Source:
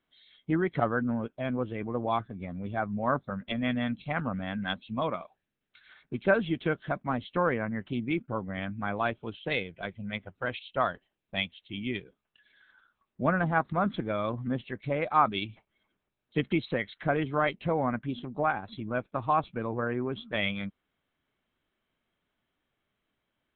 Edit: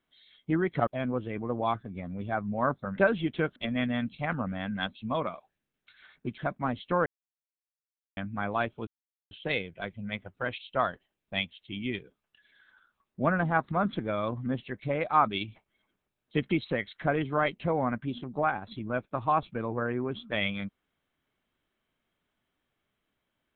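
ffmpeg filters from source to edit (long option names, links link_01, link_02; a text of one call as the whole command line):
ffmpeg -i in.wav -filter_complex "[0:a]asplit=8[link_01][link_02][link_03][link_04][link_05][link_06][link_07][link_08];[link_01]atrim=end=0.872[link_09];[link_02]atrim=start=1.318:end=3.432[link_10];[link_03]atrim=start=6.248:end=6.832[link_11];[link_04]atrim=start=3.428:end=6.252[link_12];[link_05]atrim=start=6.828:end=7.51,asetpts=PTS-STARTPTS,afade=type=out:start_time=0.678:duration=0.004:curve=hsin[link_13];[link_06]atrim=start=7.51:end=8.62,asetpts=PTS-STARTPTS,volume=0[link_14];[link_07]atrim=start=8.62:end=9.32,asetpts=PTS-STARTPTS,afade=type=in:duration=0.004:curve=hsin,afade=type=out:start_time=0.696:duration=0.004:curve=hsin,apad=pad_dur=0.44[link_15];[link_08]atrim=start=9.32,asetpts=PTS-STARTPTS,afade=type=in:duration=0.004:curve=hsin[link_16];[link_09][link_10]acrossfade=duration=0.004:curve1=hsin:curve2=hsin[link_17];[link_17][link_11]acrossfade=duration=0.004:curve1=hsin:curve2=hsin[link_18];[link_18][link_12]acrossfade=duration=0.004:curve1=hsin:curve2=hsin[link_19];[link_13][link_14][link_15][link_16]concat=n=4:v=0:a=1[link_20];[link_19][link_20]acrossfade=duration=0.004:curve1=hsin:curve2=hsin" out.wav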